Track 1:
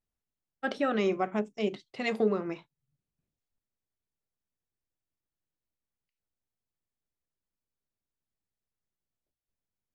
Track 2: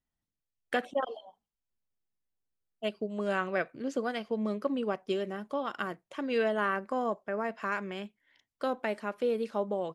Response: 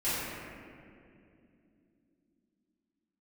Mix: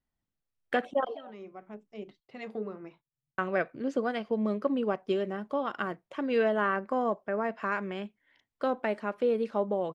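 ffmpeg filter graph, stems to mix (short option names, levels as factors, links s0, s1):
-filter_complex "[0:a]adelay=350,volume=0.335[s0];[1:a]acontrast=74,volume=0.631,asplit=3[s1][s2][s3];[s1]atrim=end=2.2,asetpts=PTS-STARTPTS,afade=t=out:st=2.196:d=0.004:c=hsin[s4];[s2]atrim=start=2.2:end=3.38,asetpts=PTS-STARTPTS,volume=0[s5];[s3]atrim=start=3.38,asetpts=PTS-STARTPTS,afade=t=in:d=0.004:c=hsin[s6];[s4][s5][s6]concat=n=3:v=0:a=1,asplit=2[s7][s8];[s8]apad=whole_len=453916[s9];[s0][s9]sidechaincompress=threshold=0.0158:ratio=4:attack=11:release=1150[s10];[s10][s7]amix=inputs=2:normalize=0,lowpass=f=2400:p=1"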